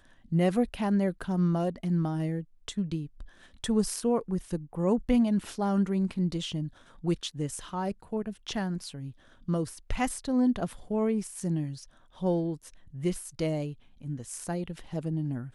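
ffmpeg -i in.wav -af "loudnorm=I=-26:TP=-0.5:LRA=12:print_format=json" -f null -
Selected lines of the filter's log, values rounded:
"input_i" : "-30.9",
"input_tp" : "-12.7",
"input_lra" : "5.2",
"input_thresh" : "-41.3",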